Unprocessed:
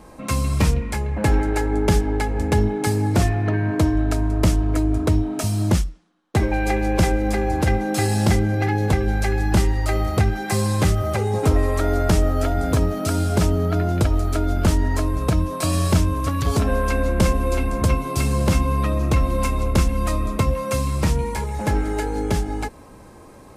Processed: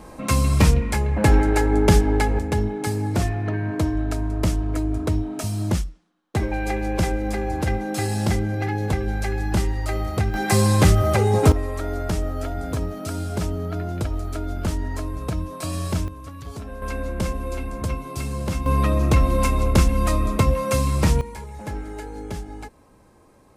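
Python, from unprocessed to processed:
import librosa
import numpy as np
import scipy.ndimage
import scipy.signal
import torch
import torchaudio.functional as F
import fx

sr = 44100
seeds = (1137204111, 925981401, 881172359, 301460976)

y = fx.gain(x, sr, db=fx.steps((0.0, 2.5), (2.39, -4.0), (10.34, 3.5), (11.52, -7.0), (16.08, -15.0), (16.82, -7.5), (18.66, 1.5), (21.21, -10.0)))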